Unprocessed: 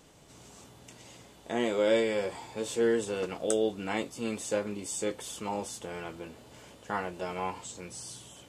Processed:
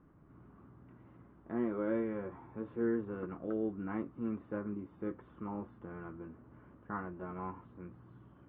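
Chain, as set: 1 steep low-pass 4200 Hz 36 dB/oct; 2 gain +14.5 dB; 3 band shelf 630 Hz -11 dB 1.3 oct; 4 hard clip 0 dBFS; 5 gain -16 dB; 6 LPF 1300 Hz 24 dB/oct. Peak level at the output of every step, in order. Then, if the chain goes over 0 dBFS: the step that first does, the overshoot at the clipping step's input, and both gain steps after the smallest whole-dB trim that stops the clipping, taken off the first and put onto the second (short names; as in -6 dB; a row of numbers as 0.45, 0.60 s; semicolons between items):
-15.0, -0.5, -4.0, -4.0, -20.0, -23.5 dBFS; no overload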